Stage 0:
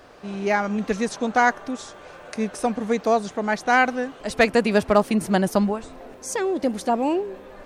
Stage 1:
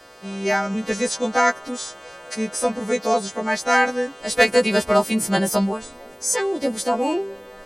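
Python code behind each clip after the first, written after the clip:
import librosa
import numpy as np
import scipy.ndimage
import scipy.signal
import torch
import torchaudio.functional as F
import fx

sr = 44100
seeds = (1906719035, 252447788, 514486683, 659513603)

y = fx.freq_snap(x, sr, grid_st=2)
y = fx.small_body(y, sr, hz=(510.0, 1700.0, 3100.0), ring_ms=100, db=7)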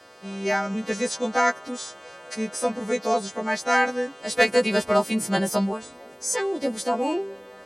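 y = scipy.signal.sosfilt(scipy.signal.butter(2, 86.0, 'highpass', fs=sr, output='sos'), x)
y = fx.high_shelf(y, sr, hz=12000.0, db=-7.0)
y = F.gain(torch.from_numpy(y), -3.0).numpy()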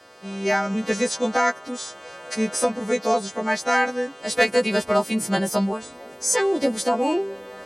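y = fx.recorder_agc(x, sr, target_db=-10.5, rise_db_per_s=5.3, max_gain_db=30)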